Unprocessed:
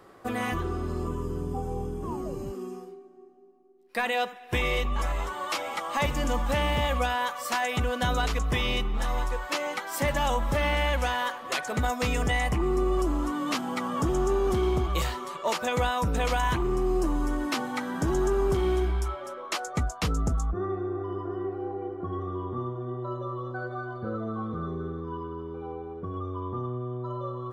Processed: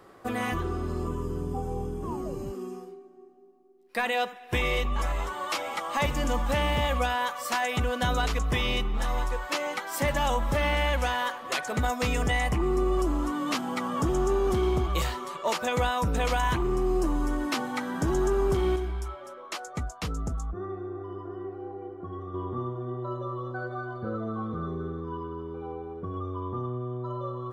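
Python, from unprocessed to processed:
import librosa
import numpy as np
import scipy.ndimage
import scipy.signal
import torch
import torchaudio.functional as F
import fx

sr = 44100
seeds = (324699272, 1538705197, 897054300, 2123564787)

y = fx.edit(x, sr, fx.clip_gain(start_s=18.76, length_s=3.58, db=-5.0), tone=tone)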